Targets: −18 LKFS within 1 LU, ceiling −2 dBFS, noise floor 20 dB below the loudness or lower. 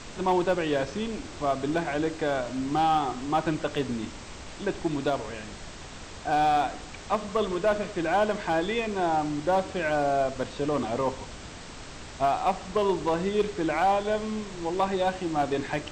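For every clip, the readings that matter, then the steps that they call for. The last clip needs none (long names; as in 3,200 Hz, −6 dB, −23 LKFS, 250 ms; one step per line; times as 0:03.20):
share of clipped samples 0.5%; peaks flattened at −17.0 dBFS; background noise floor −42 dBFS; target noise floor −48 dBFS; integrated loudness −27.5 LKFS; sample peak −17.0 dBFS; target loudness −18.0 LKFS
→ clipped peaks rebuilt −17 dBFS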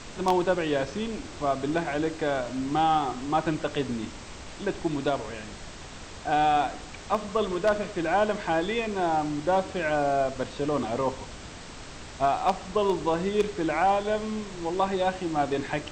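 share of clipped samples 0.0%; background noise floor −42 dBFS; target noise floor −48 dBFS
→ noise reduction from a noise print 6 dB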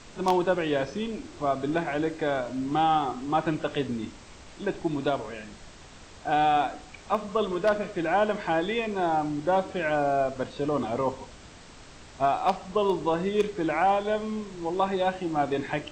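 background noise floor −48 dBFS; integrated loudness −27.5 LKFS; sample peak −8.0 dBFS; target loudness −18.0 LKFS
→ level +9.5 dB
brickwall limiter −2 dBFS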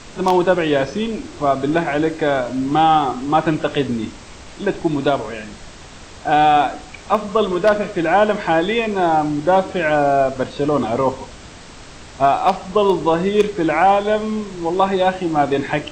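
integrated loudness −18.0 LKFS; sample peak −2.0 dBFS; background noise floor −39 dBFS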